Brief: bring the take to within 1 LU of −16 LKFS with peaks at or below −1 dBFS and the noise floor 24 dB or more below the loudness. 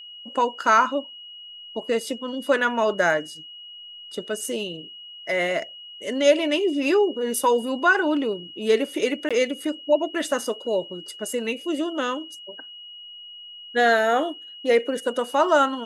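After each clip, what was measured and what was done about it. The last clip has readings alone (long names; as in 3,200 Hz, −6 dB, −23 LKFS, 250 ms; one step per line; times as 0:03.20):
number of dropouts 1; longest dropout 16 ms; interfering tone 2,900 Hz; level of the tone −39 dBFS; integrated loudness −23.0 LKFS; sample peak −5.5 dBFS; target loudness −16.0 LKFS
→ repair the gap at 0:09.29, 16 ms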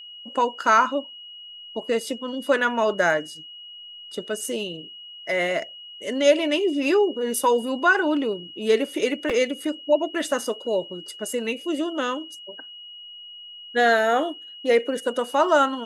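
number of dropouts 0; interfering tone 2,900 Hz; level of the tone −39 dBFS
→ notch filter 2,900 Hz, Q 30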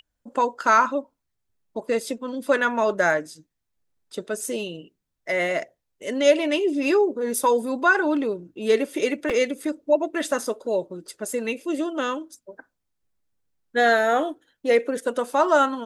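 interfering tone none found; integrated loudness −23.0 LKFS; sample peak −5.5 dBFS; target loudness −16.0 LKFS
→ level +7 dB
brickwall limiter −1 dBFS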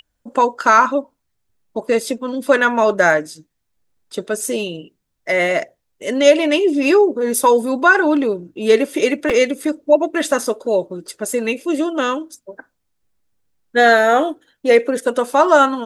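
integrated loudness −16.5 LKFS; sample peak −1.0 dBFS; background noise floor −72 dBFS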